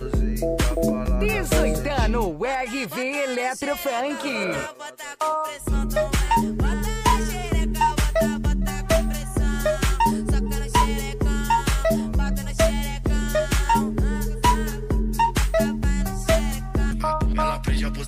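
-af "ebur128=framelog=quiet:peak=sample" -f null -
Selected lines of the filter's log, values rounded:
Integrated loudness:
  I:         -23.4 LUFS
  Threshold: -33.4 LUFS
Loudness range:
  LRA:         2.5 LU
  Threshold: -43.4 LUFS
  LRA low:   -25.1 LUFS
  LRA high:  -22.6 LUFS
Sample peak:
  Peak:       -7.1 dBFS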